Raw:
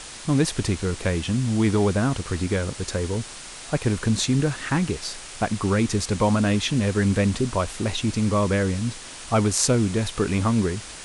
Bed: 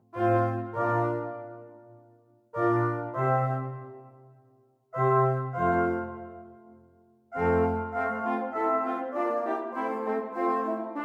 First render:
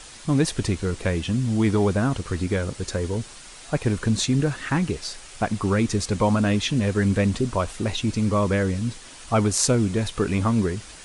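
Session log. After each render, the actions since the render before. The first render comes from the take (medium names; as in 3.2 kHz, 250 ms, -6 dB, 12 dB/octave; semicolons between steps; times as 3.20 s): noise reduction 6 dB, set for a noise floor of -39 dBFS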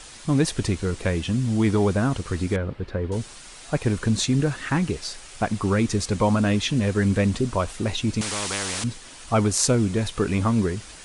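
2.56–3.12 s: distance through air 420 m; 8.21–8.84 s: spectrum-flattening compressor 4:1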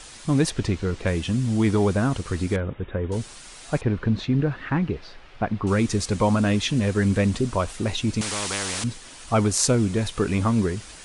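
0.50–1.07 s: Bessel low-pass 4.7 kHz; 2.60–3.10 s: brick-wall FIR low-pass 3.8 kHz; 3.81–5.67 s: distance through air 330 m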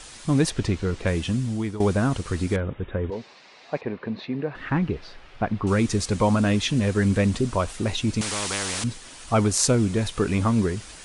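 1.28–1.80 s: fade out, to -15 dB; 3.10–4.55 s: cabinet simulation 280–4200 Hz, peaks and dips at 310 Hz -5 dB, 1.4 kHz -8 dB, 3.2 kHz -8 dB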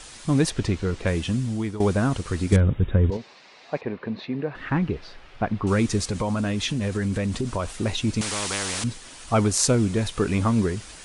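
2.52–3.17 s: tone controls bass +11 dB, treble +11 dB; 6.03–7.74 s: compression, threshold -21 dBFS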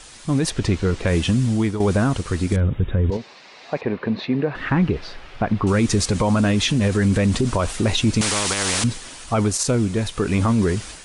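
level rider gain up to 8 dB; peak limiter -10.5 dBFS, peak gain reduction 9 dB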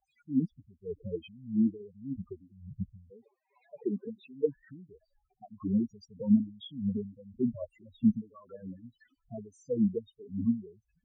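loudest bins only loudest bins 4; wah-wah 1.7 Hz 210–2000 Hz, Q 4.5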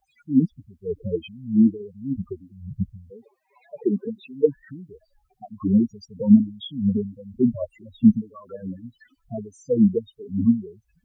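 trim +10 dB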